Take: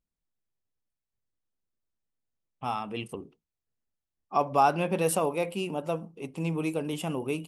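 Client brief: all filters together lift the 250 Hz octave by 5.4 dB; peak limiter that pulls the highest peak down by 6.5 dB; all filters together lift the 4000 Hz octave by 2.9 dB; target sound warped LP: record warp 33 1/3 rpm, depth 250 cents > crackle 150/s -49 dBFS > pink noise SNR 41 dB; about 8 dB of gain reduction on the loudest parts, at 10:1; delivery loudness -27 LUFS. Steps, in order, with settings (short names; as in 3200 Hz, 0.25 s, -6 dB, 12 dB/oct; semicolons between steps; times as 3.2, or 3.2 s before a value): bell 250 Hz +8 dB; bell 4000 Hz +4.5 dB; compressor 10:1, threshold -24 dBFS; limiter -20.5 dBFS; record warp 33 1/3 rpm, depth 250 cents; crackle 150/s -49 dBFS; pink noise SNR 41 dB; gain +5.5 dB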